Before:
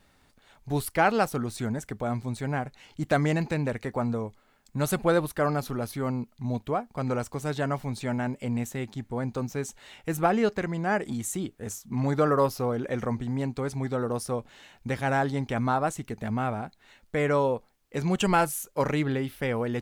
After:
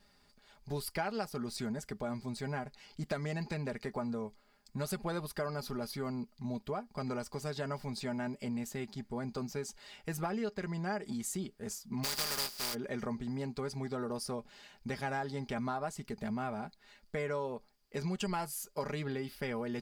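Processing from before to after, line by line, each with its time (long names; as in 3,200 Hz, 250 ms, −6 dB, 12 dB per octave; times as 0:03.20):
0:12.03–0:12.73: compressing power law on the bin magnitudes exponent 0.18
whole clip: parametric band 4,800 Hz +13.5 dB 0.23 octaves; comb filter 4.9 ms, depth 55%; downward compressor 4 to 1, threshold −27 dBFS; level −6.5 dB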